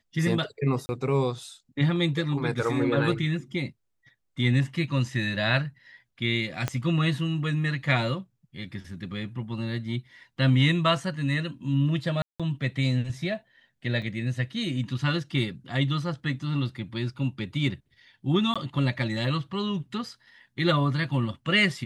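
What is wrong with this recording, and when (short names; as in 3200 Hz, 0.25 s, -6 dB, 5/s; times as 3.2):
0.86–0.89 gap 30 ms
6.68 pop -13 dBFS
12.22–12.4 gap 0.176 s
14.02 gap 2.8 ms
18.54–18.56 gap 16 ms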